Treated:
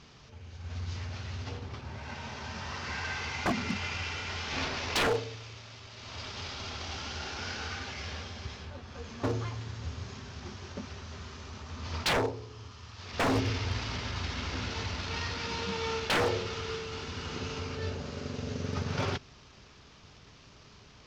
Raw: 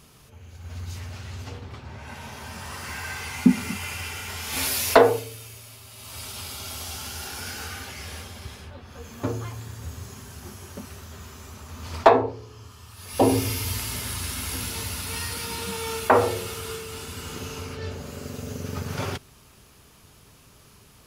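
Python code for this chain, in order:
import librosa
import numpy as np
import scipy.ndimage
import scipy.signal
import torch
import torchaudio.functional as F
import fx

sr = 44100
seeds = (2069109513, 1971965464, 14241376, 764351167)

y = fx.cvsd(x, sr, bps=32000)
y = 10.0 ** (-20.0 / 20.0) * (np.abs((y / 10.0 ** (-20.0 / 20.0) + 3.0) % 4.0 - 2.0) - 1.0)
y = y * 10.0 ** (-1.5 / 20.0)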